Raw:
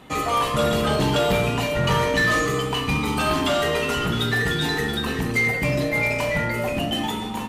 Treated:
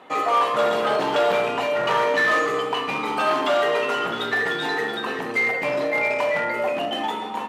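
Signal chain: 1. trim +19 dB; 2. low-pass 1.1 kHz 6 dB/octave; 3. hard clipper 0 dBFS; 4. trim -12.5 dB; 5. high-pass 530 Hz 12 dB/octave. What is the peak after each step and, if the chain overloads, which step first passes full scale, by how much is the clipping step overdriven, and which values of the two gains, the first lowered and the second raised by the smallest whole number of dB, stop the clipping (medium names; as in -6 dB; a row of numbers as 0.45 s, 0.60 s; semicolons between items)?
+4.0 dBFS, +4.0 dBFS, 0.0 dBFS, -12.5 dBFS, -9.5 dBFS; step 1, 4.0 dB; step 1 +15 dB, step 4 -8.5 dB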